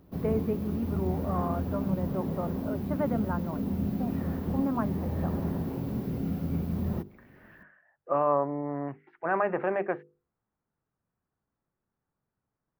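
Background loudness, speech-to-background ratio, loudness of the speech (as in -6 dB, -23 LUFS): -32.5 LUFS, 0.5 dB, -32.0 LUFS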